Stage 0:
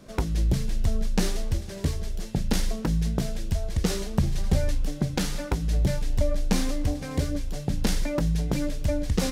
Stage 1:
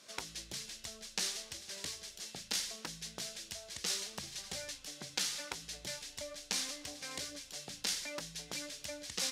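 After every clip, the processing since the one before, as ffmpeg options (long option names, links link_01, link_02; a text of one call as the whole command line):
ffmpeg -i in.wav -filter_complex "[0:a]asplit=2[link_01][link_02];[link_02]acompressor=threshold=-31dB:ratio=6,volume=0dB[link_03];[link_01][link_03]amix=inputs=2:normalize=0,bandpass=frequency=5400:width_type=q:width=0.68:csg=0,volume=-2.5dB" out.wav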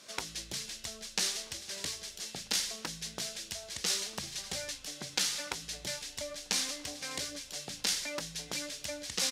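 ffmpeg -i in.wav -filter_complex "[0:a]asplit=2[link_01][link_02];[link_02]adelay=1283,volume=-23dB,highshelf=frequency=4000:gain=-28.9[link_03];[link_01][link_03]amix=inputs=2:normalize=0,volume=4.5dB" out.wav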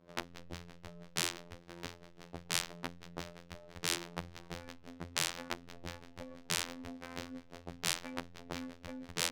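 ffmpeg -i in.wav -af "afreqshift=-36,afftfilt=real='hypot(re,im)*cos(PI*b)':imag='0':win_size=2048:overlap=0.75,adynamicsmooth=sensitivity=3:basefreq=560,volume=4.5dB" out.wav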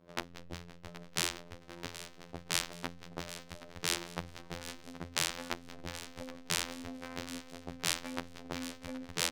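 ffmpeg -i in.wav -af "aecho=1:1:774|1548|2322|3096:0.2|0.0898|0.0404|0.0182,volume=1.5dB" out.wav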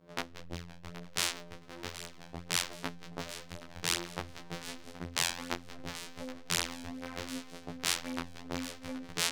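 ffmpeg -i in.wav -af "flanger=delay=18:depth=6.5:speed=0.66,volume=4.5dB" out.wav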